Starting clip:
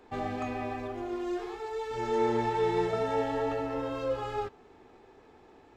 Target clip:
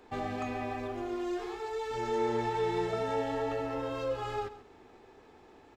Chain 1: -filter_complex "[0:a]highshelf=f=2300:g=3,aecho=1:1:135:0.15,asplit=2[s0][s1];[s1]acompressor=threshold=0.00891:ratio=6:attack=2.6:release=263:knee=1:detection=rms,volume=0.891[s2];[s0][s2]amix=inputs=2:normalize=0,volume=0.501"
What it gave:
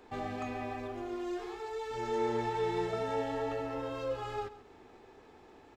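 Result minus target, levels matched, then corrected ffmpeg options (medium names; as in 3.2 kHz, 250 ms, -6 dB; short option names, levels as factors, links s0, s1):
compression: peak gain reduction +9 dB
-filter_complex "[0:a]highshelf=f=2300:g=3,aecho=1:1:135:0.15,asplit=2[s0][s1];[s1]acompressor=threshold=0.0316:ratio=6:attack=2.6:release=263:knee=1:detection=rms,volume=0.891[s2];[s0][s2]amix=inputs=2:normalize=0,volume=0.501"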